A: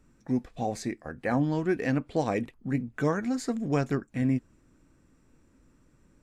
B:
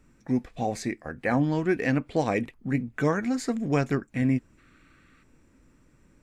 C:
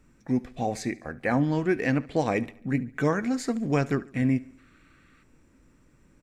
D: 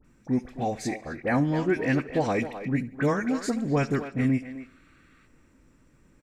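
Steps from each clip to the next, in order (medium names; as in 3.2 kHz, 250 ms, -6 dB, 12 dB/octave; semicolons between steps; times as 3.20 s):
time-frequency box 4.58–5.23 s, 1.1–4.6 kHz +11 dB; peaking EQ 2.2 kHz +4.5 dB 0.71 oct; trim +2 dB
feedback delay 71 ms, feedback 51%, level -21 dB
phase dispersion highs, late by 47 ms, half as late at 1.8 kHz; speakerphone echo 260 ms, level -10 dB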